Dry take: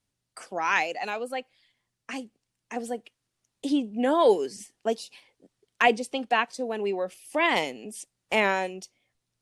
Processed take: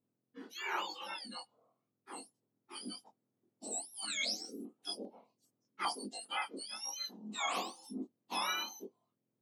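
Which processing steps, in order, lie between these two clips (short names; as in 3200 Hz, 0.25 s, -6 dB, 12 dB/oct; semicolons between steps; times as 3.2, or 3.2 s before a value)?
spectrum mirrored in octaves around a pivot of 1500 Hz; chorus 1 Hz, delay 19.5 ms, depth 6.7 ms; 4.05–6.42 stepped notch 5 Hz 720–7500 Hz; gain -6 dB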